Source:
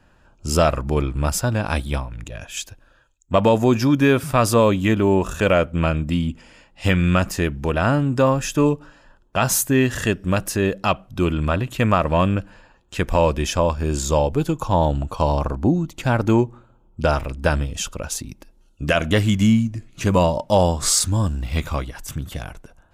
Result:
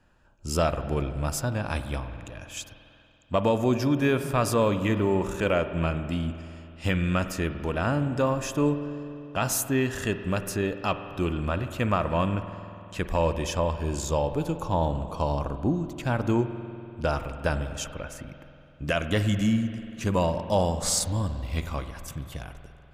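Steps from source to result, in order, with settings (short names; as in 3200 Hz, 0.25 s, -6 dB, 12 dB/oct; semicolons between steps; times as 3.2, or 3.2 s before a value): 17.84–18.85 resonant high shelf 2800 Hz -9 dB, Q 3; spring tank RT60 2.9 s, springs 48 ms, chirp 55 ms, DRR 9.5 dB; gain -7.5 dB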